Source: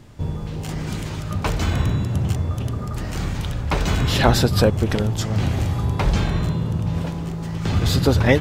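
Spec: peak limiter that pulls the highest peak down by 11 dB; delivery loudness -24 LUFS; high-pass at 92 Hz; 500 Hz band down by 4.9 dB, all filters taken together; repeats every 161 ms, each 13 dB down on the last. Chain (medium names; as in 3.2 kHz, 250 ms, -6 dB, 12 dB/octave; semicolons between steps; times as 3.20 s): high-pass 92 Hz; peaking EQ 500 Hz -6 dB; peak limiter -14.5 dBFS; feedback delay 161 ms, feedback 22%, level -13 dB; trim +1.5 dB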